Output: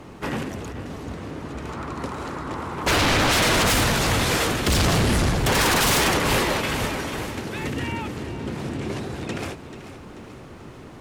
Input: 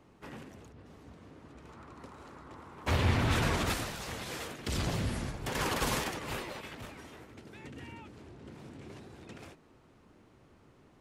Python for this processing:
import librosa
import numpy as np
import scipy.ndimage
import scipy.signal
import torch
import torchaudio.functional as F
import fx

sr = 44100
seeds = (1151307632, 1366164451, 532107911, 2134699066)

y = fx.echo_feedback(x, sr, ms=437, feedback_pct=51, wet_db=-13.0)
y = fx.fold_sine(y, sr, drive_db=15, ceiling_db=-16.0)